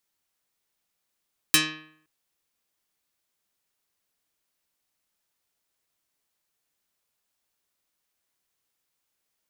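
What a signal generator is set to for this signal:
Karplus-Strong string D#3, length 0.52 s, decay 0.65 s, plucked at 0.22, dark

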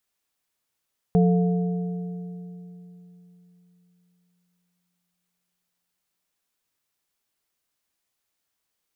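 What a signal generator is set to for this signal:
struck metal plate, length 5.14 s, lowest mode 177 Hz, modes 3, decay 3.66 s, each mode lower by 6.5 dB, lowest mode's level −14.5 dB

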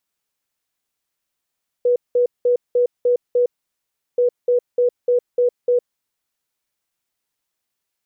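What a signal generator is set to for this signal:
beeps in groups sine 489 Hz, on 0.11 s, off 0.19 s, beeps 6, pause 0.72 s, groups 2, −12.5 dBFS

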